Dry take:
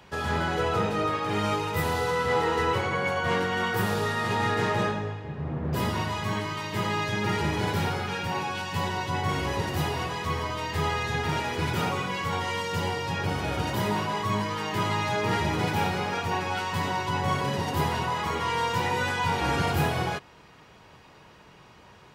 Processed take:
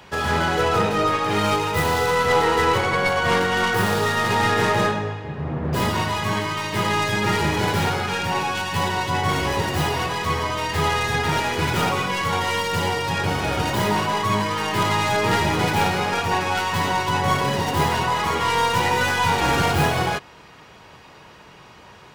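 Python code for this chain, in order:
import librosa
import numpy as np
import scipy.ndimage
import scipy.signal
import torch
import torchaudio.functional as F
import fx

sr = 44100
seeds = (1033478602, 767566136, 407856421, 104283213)

y = fx.tracing_dist(x, sr, depth_ms=0.088)
y = fx.low_shelf(y, sr, hz=380.0, db=-3.5)
y = y * librosa.db_to_amplitude(7.5)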